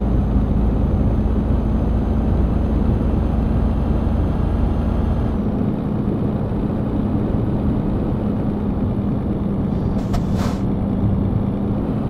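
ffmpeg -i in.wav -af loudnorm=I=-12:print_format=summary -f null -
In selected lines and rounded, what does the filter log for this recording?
Input Integrated:    -20.2 LUFS
Input True Peak:      -5.1 dBTP
Input LRA:             1.4 LU
Input Threshold:     -30.2 LUFS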